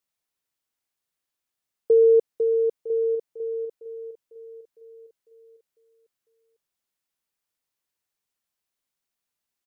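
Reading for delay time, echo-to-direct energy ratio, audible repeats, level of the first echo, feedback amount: 956 ms, −15.5 dB, 2, −16.0 dB, 30%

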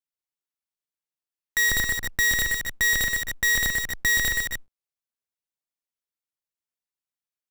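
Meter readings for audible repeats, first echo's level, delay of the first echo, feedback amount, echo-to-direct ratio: 2, −4.5 dB, 124 ms, repeats not evenly spaced, −2.0 dB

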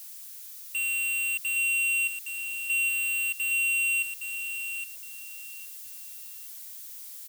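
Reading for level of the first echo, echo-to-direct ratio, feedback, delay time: −7.0 dB, −7.0 dB, 22%, 815 ms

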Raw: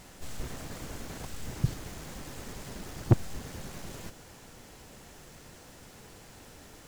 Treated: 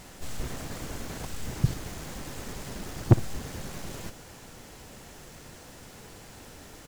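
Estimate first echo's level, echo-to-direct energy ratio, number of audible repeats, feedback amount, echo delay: −18.0 dB, −18.0 dB, 1, 21%, 61 ms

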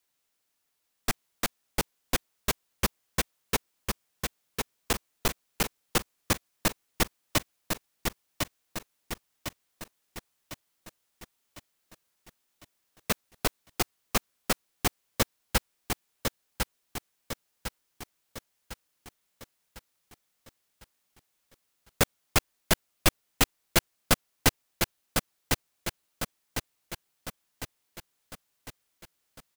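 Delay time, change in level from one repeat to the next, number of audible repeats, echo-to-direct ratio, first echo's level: 1,053 ms, −6.0 dB, 6, −3.0 dB, −4.0 dB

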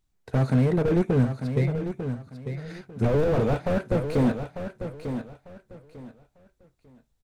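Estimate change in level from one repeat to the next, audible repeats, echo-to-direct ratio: −12.0 dB, 3, −8.5 dB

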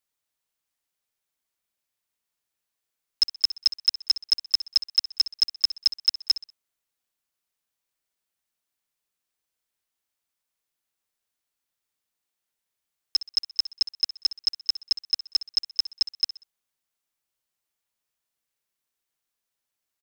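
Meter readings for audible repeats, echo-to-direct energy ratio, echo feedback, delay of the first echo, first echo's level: 3, −14.0 dB, 34%, 63 ms, −14.5 dB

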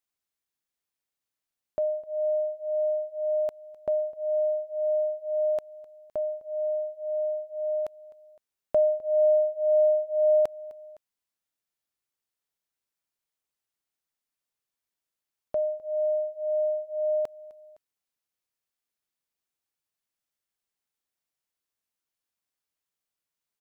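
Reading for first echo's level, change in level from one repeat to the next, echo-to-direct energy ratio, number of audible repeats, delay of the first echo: −21.0 dB, −4.5 dB, −19.5 dB, 2, 256 ms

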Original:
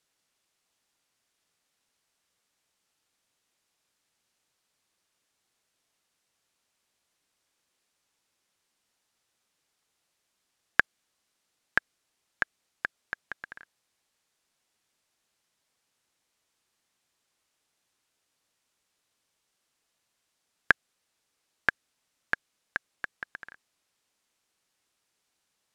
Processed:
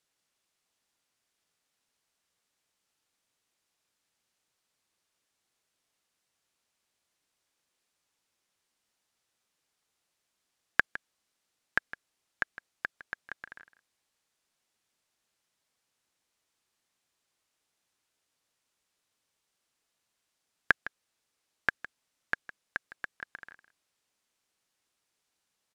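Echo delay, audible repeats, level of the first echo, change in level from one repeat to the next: 159 ms, 1, −15.5 dB, repeats not evenly spaced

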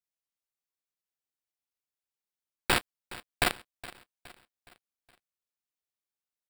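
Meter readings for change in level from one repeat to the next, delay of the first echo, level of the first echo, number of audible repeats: −7.0 dB, 417 ms, −18.0 dB, 3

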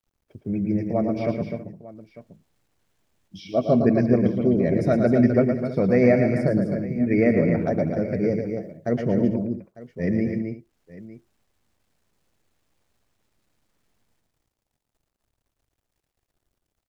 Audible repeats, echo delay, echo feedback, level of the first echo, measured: 5, 112 ms, repeats not evenly spaced, −6.5 dB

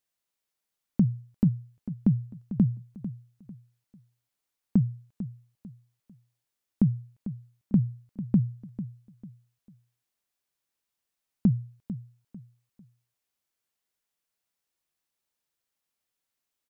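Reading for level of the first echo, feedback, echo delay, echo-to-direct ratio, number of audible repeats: −13.0 dB, 31%, 447 ms, −12.5 dB, 3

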